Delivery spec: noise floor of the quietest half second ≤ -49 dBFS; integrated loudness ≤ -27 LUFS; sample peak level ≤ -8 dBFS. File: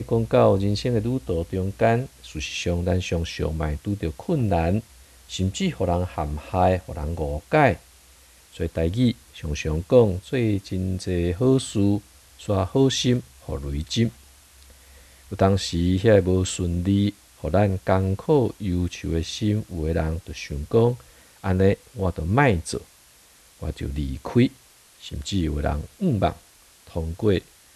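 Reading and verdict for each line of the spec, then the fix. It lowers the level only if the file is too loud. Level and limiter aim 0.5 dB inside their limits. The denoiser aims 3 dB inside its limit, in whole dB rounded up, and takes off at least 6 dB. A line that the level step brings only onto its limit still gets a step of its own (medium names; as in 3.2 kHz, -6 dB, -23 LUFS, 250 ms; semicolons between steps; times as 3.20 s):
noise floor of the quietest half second -53 dBFS: pass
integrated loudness -23.5 LUFS: fail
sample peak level -4.0 dBFS: fail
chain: trim -4 dB; peak limiter -8.5 dBFS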